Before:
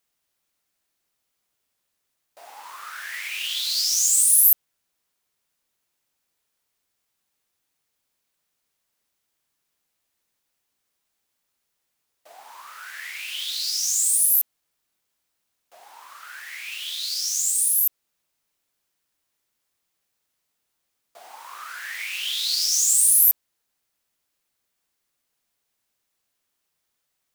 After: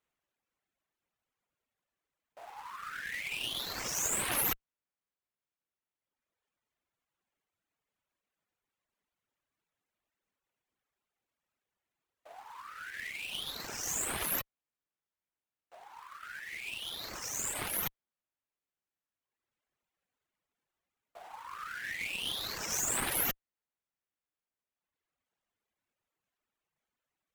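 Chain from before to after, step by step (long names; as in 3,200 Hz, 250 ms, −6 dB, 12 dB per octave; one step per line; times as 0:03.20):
running median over 9 samples
harmonic generator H 5 −14 dB, 6 −13 dB, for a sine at −9.5 dBFS
reverb reduction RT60 1.7 s
level −8.5 dB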